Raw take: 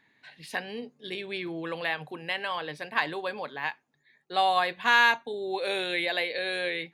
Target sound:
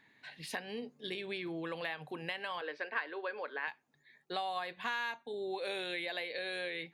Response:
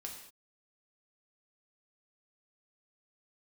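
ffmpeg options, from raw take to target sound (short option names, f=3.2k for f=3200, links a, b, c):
-filter_complex "[0:a]acompressor=threshold=-37dB:ratio=4,asettb=1/sr,asplit=3[a][b][c];[a]atrim=end=2.614[d];[b]atrim=start=2.61:end=3.68,asetpts=PTS-STARTPTS,afade=t=in:d=0.004:c=qsin,afade=t=out:st=1.066:d=0.004:c=qsin,highpass=f=310:w=0.5412,highpass=f=310:w=1.3066,equalizer=f=470:t=q:w=4:g=4,equalizer=f=770:t=q:w=4:g=-5,equalizer=f=1.5k:t=q:w=4:g=7,equalizer=f=3.6k:t=q:w=4:g=-8,lowpass=f=4.6k:w=0.5412,lowpass=f=4.6k:w=1.3066[e];[c]atrim=start=3.676[f];[d][e]acrossfade=d=0.004:c1=hsin:c2=qsin[g];[g][f]acrossfade=d=0.004:c1=qsin:c2=hsin"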